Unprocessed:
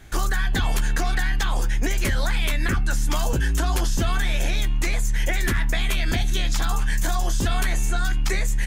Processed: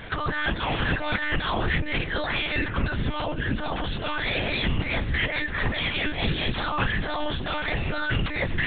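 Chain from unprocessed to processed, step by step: high-pass 130 Hz 12 dB/octave; compressor with a negative ratio -34 dBFS, ratio -1; monotone LPC vocoder at 8 kHz 300 Hz; trim +8 dB

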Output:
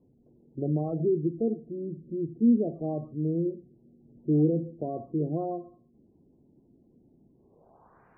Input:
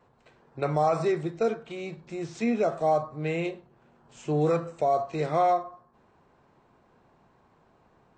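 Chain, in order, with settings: low-pass sweep 290 Hz -> 1.8 kHz, 7.35–8.07 s; spectral gate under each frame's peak -30 dB strong

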